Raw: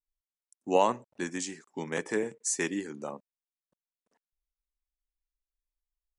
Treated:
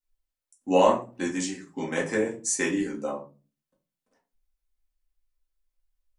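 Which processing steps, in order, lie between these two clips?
shoebox room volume 140 m³, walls furnished, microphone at 2.1 m

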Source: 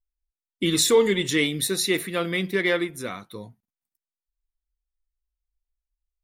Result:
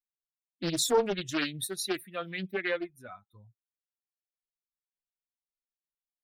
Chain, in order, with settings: per-bin expansion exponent 2; Doppler distortion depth 0.49 ms; gain -5 dB

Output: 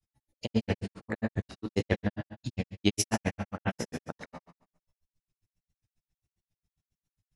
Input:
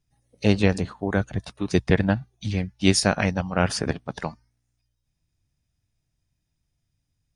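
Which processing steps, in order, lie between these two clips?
repeated pitch sweeps +2.5 st, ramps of 0.644 s; Schroeder reverb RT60 0.7 s, combs from 28 ms, DRR 3.5 dB; grains 72 ms, grains 7.4/s, spray 19 ms, pitch spread up and down by 0 st; gain -3 dB

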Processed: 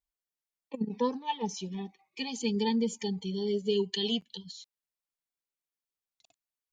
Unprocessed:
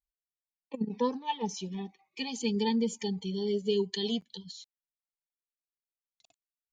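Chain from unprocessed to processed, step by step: 3.75–4.42 bell 2800 Hz +9.5 dB 0.29 oct

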